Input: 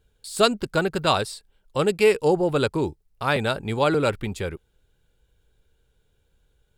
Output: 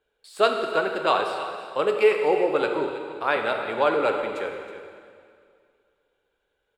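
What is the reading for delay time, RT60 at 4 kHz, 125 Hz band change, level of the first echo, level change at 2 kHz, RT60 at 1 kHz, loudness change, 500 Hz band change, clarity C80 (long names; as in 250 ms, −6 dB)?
320 ms, 2.0 s, −18.0 dB, −13.5 dB, +0.5 dB, 2.1 s, −0.5 dB, 0.0 dB, 5.0 dB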